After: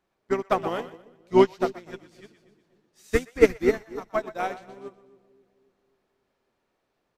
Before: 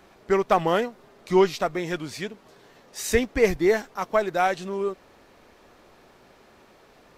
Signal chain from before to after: harmoniser -7 st -10 dB; split-band echo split 520 Hz, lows 0.268 s, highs 0.122 s, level -6.5 dB; upward expander 2.5:1, over -30 dBFS; gain +3 dB

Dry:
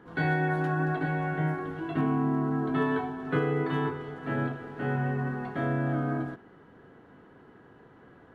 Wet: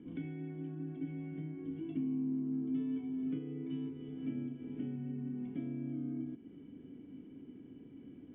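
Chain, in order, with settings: compressor 5:1, threshold -41 dBFS, peak gain reduction 17 dB; vocal tract filter i; gain +9.5 dB

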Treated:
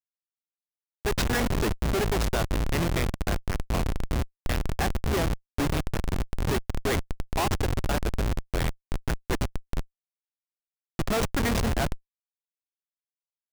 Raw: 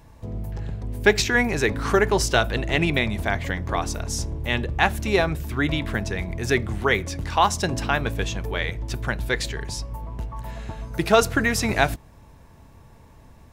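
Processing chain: Schmitt trigger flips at -20.5 dBFS

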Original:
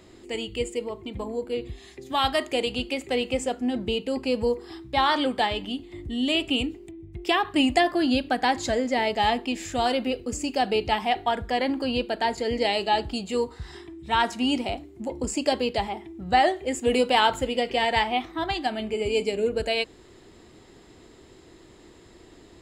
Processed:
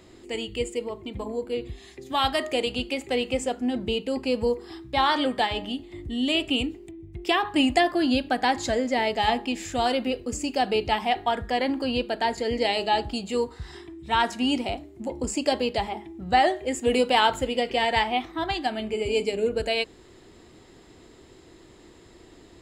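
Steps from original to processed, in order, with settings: de-hum 206.7 Hz, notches 9

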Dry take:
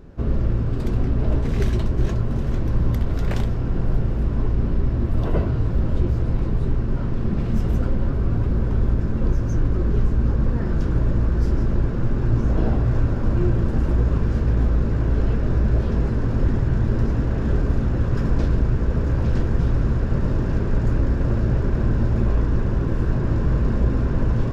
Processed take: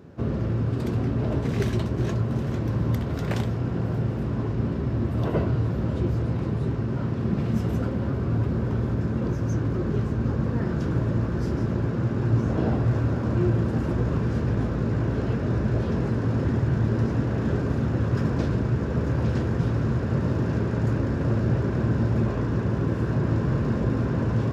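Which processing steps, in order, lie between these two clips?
HPF 86 Hz 24 dB/oct

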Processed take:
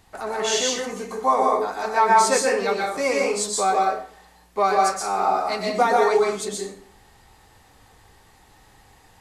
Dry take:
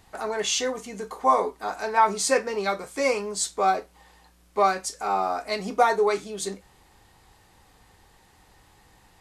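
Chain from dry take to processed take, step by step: plate-style reverb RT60 0.51 s, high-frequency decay 0.75×, pre-delay 0.11 s, DRR -1.5 dB

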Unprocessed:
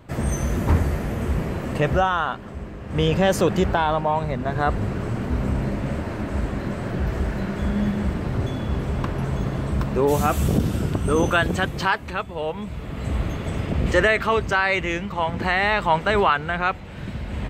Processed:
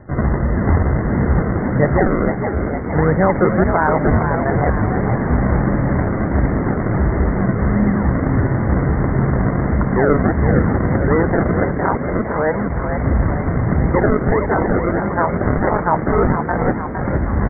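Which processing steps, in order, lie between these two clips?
in parallel at -2.5 dB: vocal rider 0.5 s; on the sum: limiter -6 dBFS, peak gain reduction 4 dB; decimation with a swept rate 35×, swing 100% 1.5 Hz; brick-wall FIR low-pass 2100 Hz; on a send: frequency-shifting echo 0.459 s, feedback 55%, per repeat +59 Hz, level -7 dB; on the sum: gain +1 dB

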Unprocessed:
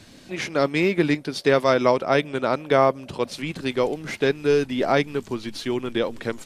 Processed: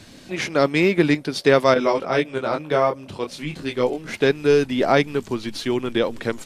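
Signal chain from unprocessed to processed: 1.74–4.14 detuned doubles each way 13 cents; gain +3 dB

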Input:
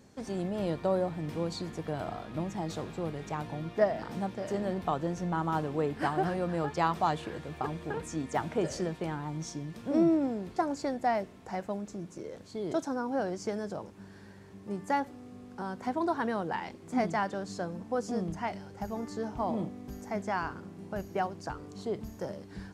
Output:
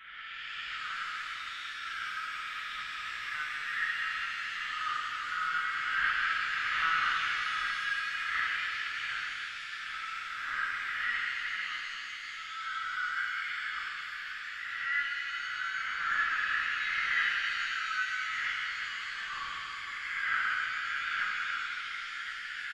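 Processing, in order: spectral swells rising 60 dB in 1.25 s; steep high-pass 1300 Hz 72 dB/oct; transient shaper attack +4 dB, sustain -3 dB; reverse; upward compressor, threshold -36 dBFS; reverse; air absorption 220 m; doubler 36 ms -4 dB; LPC vocoder at 8 kHz pitch kept; shimmer reverb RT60 3.4 s, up +7 st, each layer -8 dB, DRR -4 dB; gain +2 dB

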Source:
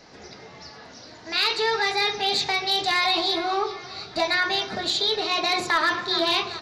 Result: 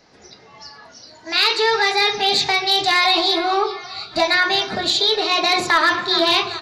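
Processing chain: spectral noise reduction 10 dB; gain +6 dB

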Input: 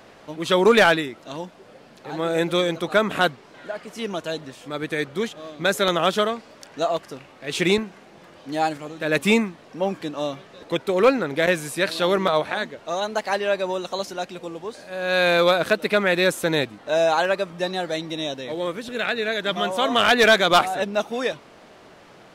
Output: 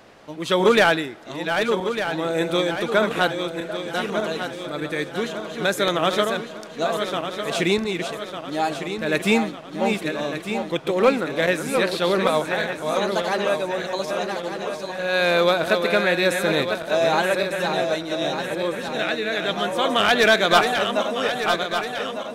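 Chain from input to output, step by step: regenerating reverse delay 0.601 s, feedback 68%, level -6 dB; on a send: reverb RT60 1.4 s, pre-delay 5 ms, DRR 20 dB; on the sum: gain -1 dB

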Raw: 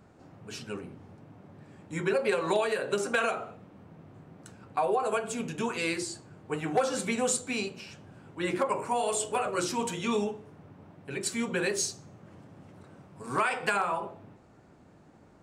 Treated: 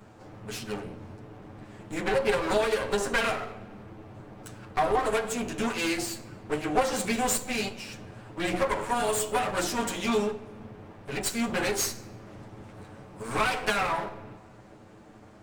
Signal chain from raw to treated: minimum comb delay 9.3 ms; in parallel at -2 dB: compressor, threshold -43 dBFS, peak gain reduction 20 dB; on the sum: shoebox room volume 2500 m³, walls mixed, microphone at 0.39 m; gain +2 dB

